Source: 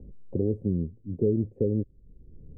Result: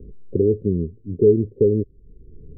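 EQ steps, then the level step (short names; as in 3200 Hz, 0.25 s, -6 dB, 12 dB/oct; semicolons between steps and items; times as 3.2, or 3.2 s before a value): synth low-pass 420 Hz, resonance Q 4.9; low shelf 250 Hz +10 dB; -4.0 dB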